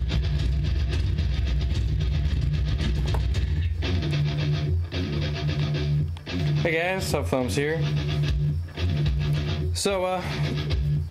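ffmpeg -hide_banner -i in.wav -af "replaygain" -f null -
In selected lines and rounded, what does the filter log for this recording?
track_gain = +9.1 dB
track_peak = 0.201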